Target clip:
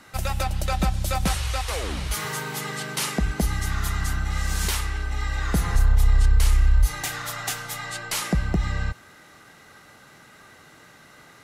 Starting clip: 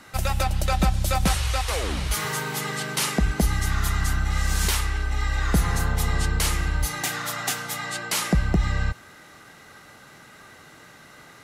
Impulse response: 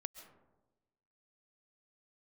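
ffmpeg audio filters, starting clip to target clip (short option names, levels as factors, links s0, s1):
-filter_complex "[0:a]asplit=3[s0][s1][s2];[s0]afade=t=out:st=5.74:d=0.02[s3];[s1]asubboost=boost=10:cutoff=62,afade=t=in:st=5.74:d=0.02,afade=t=out:st=8.2:d=0.02[s4];[s2]afade=t=in:st=8.2:d=0.02[s5];[s3][s4][s5]amix=inputs=3:normalize=0,alimiter=level_in=2.11:limit=0.891:release=50:level=0:latency=1,volume=0.376"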